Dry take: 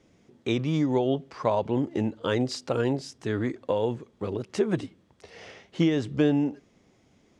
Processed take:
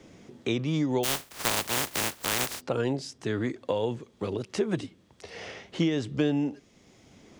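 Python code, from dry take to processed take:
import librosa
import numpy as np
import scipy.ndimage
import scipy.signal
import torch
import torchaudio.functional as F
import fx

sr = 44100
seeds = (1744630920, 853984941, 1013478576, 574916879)

y = fx.spec_flatten(x, sr, power=0.13, at=(1.03, 2.6), fade=0.02)
y = fx.band_squash(y, sr, depth_pct=40)
y = F.gain(torch.from_numpy(y), -2.0).numpy()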